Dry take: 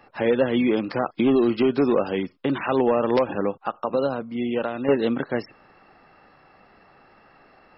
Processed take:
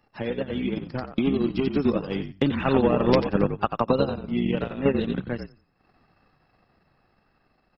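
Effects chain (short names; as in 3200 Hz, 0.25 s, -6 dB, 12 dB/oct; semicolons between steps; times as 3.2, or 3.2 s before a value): Doppler pass-by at 3.48, 5 m/s, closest 4.5 m; frequency-shifting echo 89 ms, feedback 30%, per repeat -50 Hz, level -4.5 dB; dynamic EQ 2800 Hz, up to +4 dB, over -44 dBFS, Q 0.82; transient shaper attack +7 dB, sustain -11 dB; tone controls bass +10 dB, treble +10 dB; gain -3 dB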